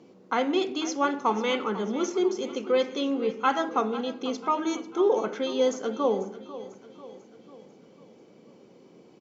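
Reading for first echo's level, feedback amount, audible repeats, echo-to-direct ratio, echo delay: −15.5 dB, 50%, 4, −14.0 dB, 494 ms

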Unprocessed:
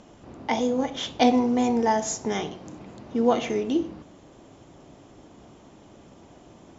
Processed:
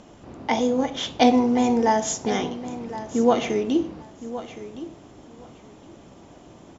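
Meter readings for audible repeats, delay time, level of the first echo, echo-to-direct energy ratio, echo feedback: 2, 1,066 ms, −14.0 dB, −14.0 dB, 17%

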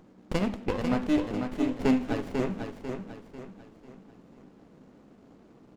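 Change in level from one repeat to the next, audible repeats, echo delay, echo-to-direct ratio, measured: −8.0 dB, 4, 495 ms, −5.0 dB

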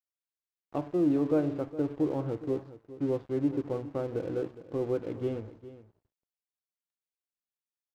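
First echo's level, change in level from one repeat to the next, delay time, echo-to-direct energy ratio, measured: −15.5 dB, repeats not evenly spaced, 412 ms, −15.5 dB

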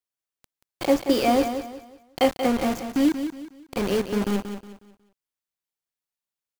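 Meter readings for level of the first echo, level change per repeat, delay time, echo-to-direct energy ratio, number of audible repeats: −9.0 dB, −9.5 dB, 182 ms, −8.5 dB, 3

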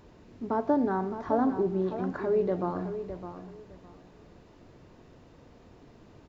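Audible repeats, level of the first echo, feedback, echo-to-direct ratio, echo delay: 2, −10.5 dB, 21%, −10.5 dB, 610 ms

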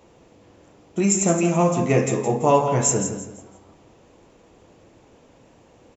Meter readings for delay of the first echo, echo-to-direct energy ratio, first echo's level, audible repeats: 167 ms, −8.5 dB, −9.0 dB, 3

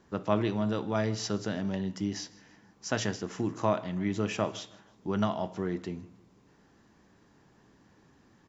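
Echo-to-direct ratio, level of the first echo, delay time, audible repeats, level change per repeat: −22.0 dB, −22.5 dB, 158 ms, 2, −8.0 dB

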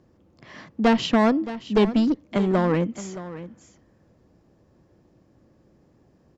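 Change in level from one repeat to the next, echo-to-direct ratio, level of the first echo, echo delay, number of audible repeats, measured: repeats not evenly spaced, −14.5 dB, −14.5 dB, 621 ms, 1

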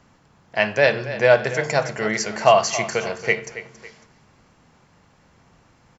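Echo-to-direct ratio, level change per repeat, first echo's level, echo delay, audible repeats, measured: −13.5 dB, −8.5 dB, −14.0 dB, 276 ms, 2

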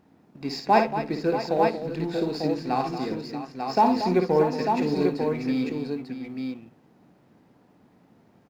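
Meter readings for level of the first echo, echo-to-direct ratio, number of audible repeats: −6.5 dB, −1.5 dB, 4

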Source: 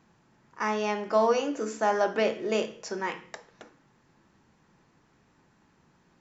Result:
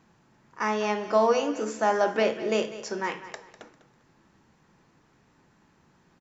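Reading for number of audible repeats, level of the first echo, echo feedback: 2, −14.5 dB, 29%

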